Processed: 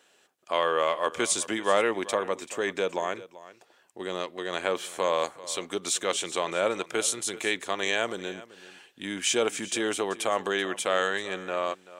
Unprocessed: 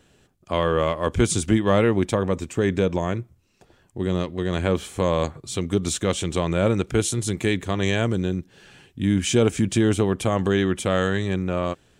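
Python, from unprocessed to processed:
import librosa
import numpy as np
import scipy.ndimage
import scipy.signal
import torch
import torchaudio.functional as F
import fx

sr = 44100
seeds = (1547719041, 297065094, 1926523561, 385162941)

y = scipy.signal.sosfilt(scipy.signal.butter(2, 580.0, 'highpass', fs=sr, output='sos'), x)
y = y + 10.0 ** (-17.5 / 20.0) * np.pad(y, (int(385 * sr / 1000.0), 0))[:len(y)]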